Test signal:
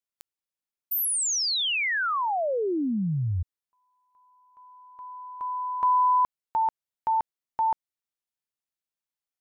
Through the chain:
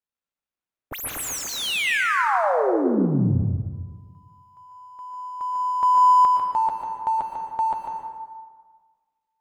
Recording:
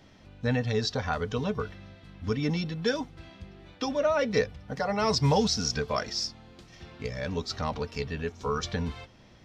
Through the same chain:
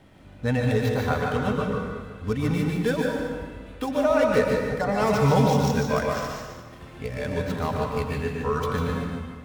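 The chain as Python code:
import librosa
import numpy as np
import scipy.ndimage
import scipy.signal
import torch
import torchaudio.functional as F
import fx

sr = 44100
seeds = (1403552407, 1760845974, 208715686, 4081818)

p1 = scipy.signal.medfilt(x, 9)
p2 = p1 + fx.echo_single(p1, sr, ms=147, db=-6.5, dry=0)
p3 = fx.rev_plate(p2, sr, seeds[0], rt60_s=1.5, hf_ratio=0.6, predelay_ms=105, drr_db=1.0)
y = p3 * 10.0 ** (2.5 / 20.0)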